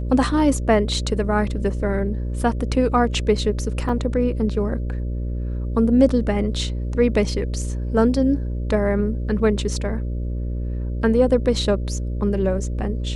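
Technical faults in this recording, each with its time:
buzz 60 Hz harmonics 10 -25 dBFS
3.89 gap 3.5 ms

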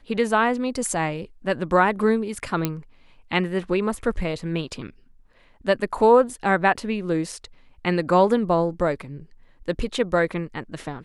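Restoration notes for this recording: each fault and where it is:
2.65 pop -8 dBFS

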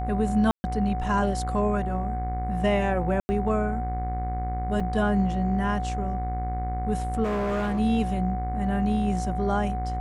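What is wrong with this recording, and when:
buzz 60 Hz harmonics 38 -30 dBFS
tone 740 Hz -31 dBFS
0.51–0.64 gap 0.13 s
3.2–3.29 gap 90 ms
4.8 gap 4.5 ms
7.23–7.8 clipped -23.5 dBFS

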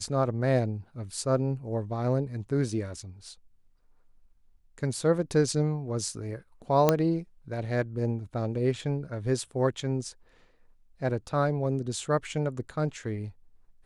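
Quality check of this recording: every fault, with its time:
6.89 pop -7 dBFS

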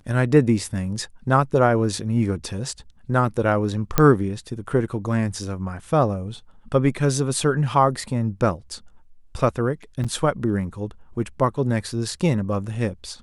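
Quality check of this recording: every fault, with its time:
3.98 pop -3 dBFS
10.04–10.05 gap 5.9 ms

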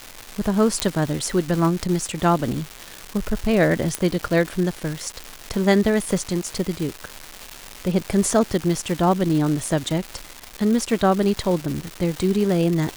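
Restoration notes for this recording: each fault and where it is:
crackle 490/s -25 dBFS
0.8 pop -3 dBFS
3.95 pop -6 dBFS

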